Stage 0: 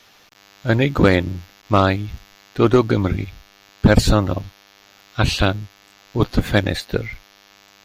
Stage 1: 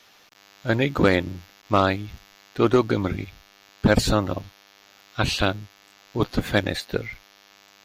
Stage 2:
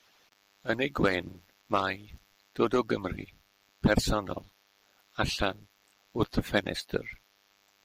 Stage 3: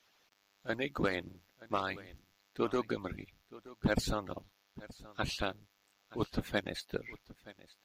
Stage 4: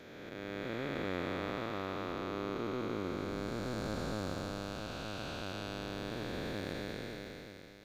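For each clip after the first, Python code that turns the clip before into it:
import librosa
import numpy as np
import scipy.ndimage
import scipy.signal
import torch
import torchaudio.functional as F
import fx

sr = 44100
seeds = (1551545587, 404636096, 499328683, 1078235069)

y1 = fx.low_shelf(x, sr, hz=140.0, db=-7.5)
y1 = y1 * librosa.db_to_amplitude(-3.0)
y2 = fx.hpss(y1, sr, part='harmonic', gain_db=-14)
y2 = y2 * librosa.db_to_amplitude(-4.5)
y3 = y2 + 10.0 ** (-19.0 / 20.0) * np.pad(y2, (int(924 * sr / 1000.0), 0))[:len(y2)]
y3 = y3 * librosa.db_to_amplitude(-6.5)
y4 = fx.spec_blur(y3, sr, span_ms=1080.0)
y4 = y4 * librosa.db_to_amplitude(7.0)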